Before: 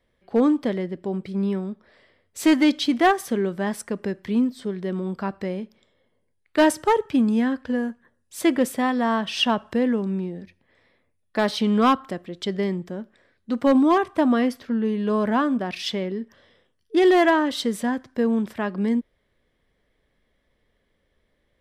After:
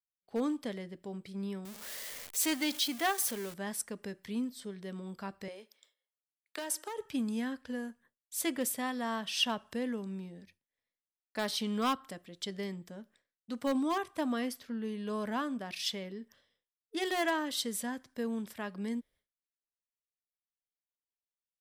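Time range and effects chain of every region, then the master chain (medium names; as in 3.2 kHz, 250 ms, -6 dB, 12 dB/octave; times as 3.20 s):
1.65–3.54 s: jump at every zero crossing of -31.5 dBFS + bass shelf 250 Hz -8 dB
5.48–6.98 s: high-pass 330 Hz 24 dB/octave + compression 10:1, threshold -22 dBFS + tape noise reduction on one side only encoder only
whole clip: pre-emphasis filter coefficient 0.8; expander -59 dBFS; band-stop 360 Hz, Q 12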